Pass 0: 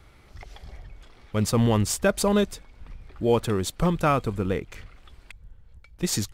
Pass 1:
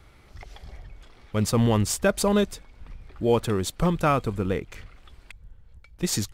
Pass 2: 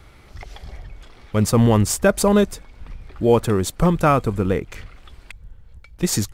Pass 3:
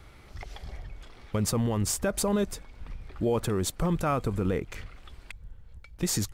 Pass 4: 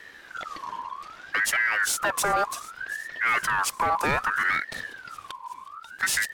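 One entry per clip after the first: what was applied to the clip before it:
no audible change
dynamic bell 3.5 kHz, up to -5 dB, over -45 dBFS, Q 1; trim +6 dB
peak limiter -14 dBFS, peak gain reduction 10 dB; trim -4 dB
feedback echo behind a high-pass 368 ms, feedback 74%, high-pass 2 kHz, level -18.5 dB; overload inside the chain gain 23 dB; ring modulator with a swept carrier 1.4 kHz, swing 30%, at 0.64 Hz; trim +6.5 dB

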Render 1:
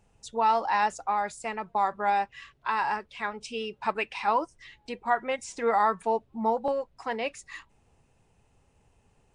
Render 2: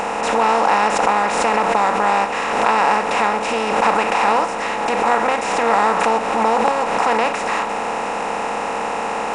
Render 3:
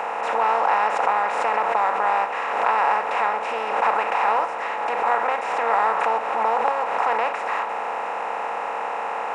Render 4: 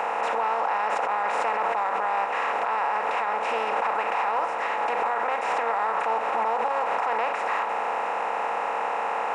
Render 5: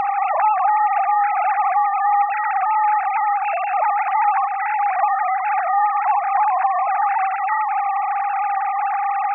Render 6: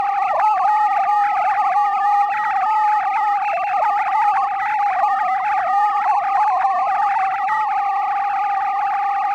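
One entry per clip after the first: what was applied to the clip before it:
spectral levelling over time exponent 0.2; swell ahead of each attack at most 34 dB/s; trim +1.5 dB
three-band isolator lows -18 dB, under 450 Hz, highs -14 dB, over 2.6 kHz; trim -3 dB
peak limiter -16.5 dBFS, peak gain reduction 11 dB
formants replaced by sine waves; trim +7 dB
in parallel at -9.5 dB: overload inside the chain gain 25.5 dB; on the sum: Opus 96 kbps 48 kHz

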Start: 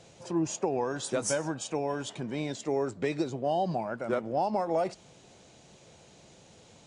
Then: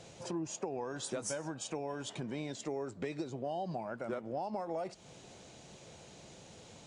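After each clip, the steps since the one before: compression 3:1, threshold -40 dBFS, peak gain reduction 12 dB; trim +1.5 dB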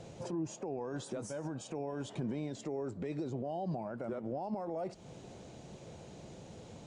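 peak limiter -34.5 dBFS, peak gain reduction 10 dB; tilt shelf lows +5.5 dB; trim +1 dB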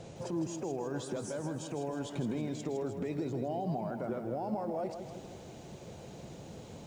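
bit-crushed delay 159 ms, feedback 55%, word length 11-bit, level -8 dB; trim +2 dB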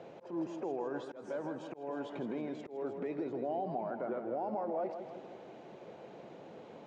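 band-pass 310–2200 Hz; slow attack 187 ms; trim +1 dB

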